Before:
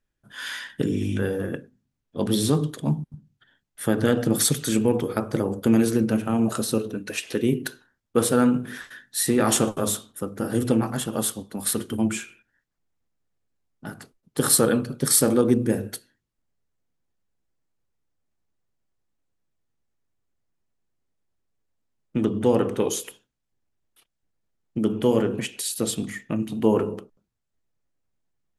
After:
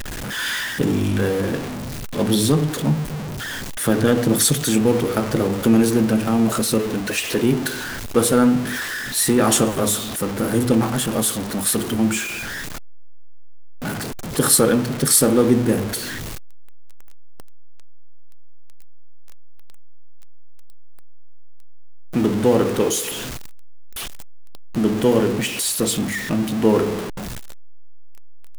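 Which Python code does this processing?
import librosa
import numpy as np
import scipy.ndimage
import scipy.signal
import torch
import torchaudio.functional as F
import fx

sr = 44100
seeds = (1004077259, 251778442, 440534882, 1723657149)

y = x + 0.5 * 10.0 ** (-25.5 / 20.0) * np.sign(x)
y = F.gain(torch.from_numpy(y), 2.5).numpy()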